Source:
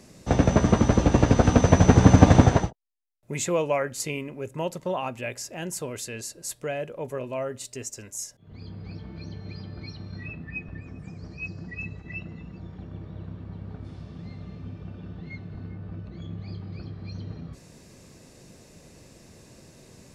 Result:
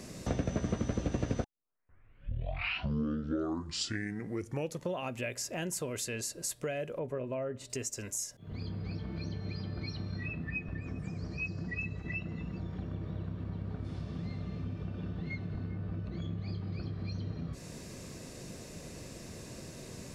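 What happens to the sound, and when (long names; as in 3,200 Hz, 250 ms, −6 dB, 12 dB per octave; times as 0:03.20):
0:01.44: tape start 3.52 s
0:06.99–0:07.70: low-pass filter 1,300 Hz 6 dB per octave
whole clip: notch filter 840 Hz, Q 12; dynamic equaliser 970 Hz, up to −6 dB, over −40 dBFS, Q 1.7; downward compressor 3 to 1, threshold −40 dBFS; level +4.5 dB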